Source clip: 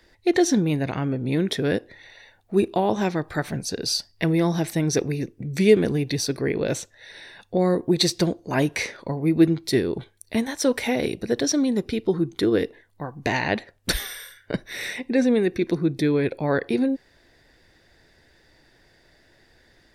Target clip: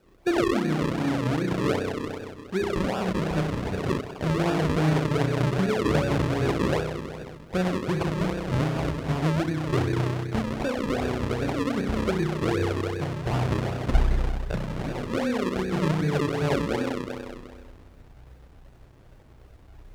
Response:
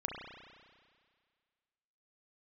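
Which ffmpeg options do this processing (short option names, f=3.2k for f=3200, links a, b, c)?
-filter_complex "[1:a]atrim=start_sample=2205[a];[0:a][a]afir=irnorm=-1:irlink=0,alimiter=limit=-14.5dB:level=0:latency=1:release=366,asettb=1/sr,asplit=3[b][c][d];[b]atrim=end=4.074[e];[c]atrim=start=4.07:end=6.81,asetpts=PTS-STARTPTS,afade=t=in:d=0.004:c=qsin,afade=t=out:st=2.736:d=0.004:c=qsin,asplit=5[f][g][h][i][j];[g]adelay=247,afreqshift=130,volume=-3.5dB[k];[h]adelay=494,afreqshift=260,volume=-13.4dB[l];[i]adelay=741,afreqshift=390,volume=-23.3dB[m];[j]adelay=988,afreqshift=520,volume=-33.2dB[n];[f][k][l][m][n]amix=inputs=5:normalize=0,atrim=end_sample=120834[o];[d]atrim=start=6.806[p];[e][o]acrossfade=d=0.004:c1=hsin:c2=qsin[q];[q][p]acrossfade=d=0.004:c1=qsin:c2=hsin,asubboost=boost=10:cutoff=79,acrusher=samples=41:mix=1:aa=0.000001:lfo=1:lforange=41:lforate=2.6,highpass=f=45:p=1,aemphasis=mode=reproduction:type=50fm,acrusher=bits=10:mix=0:aa=0.000001"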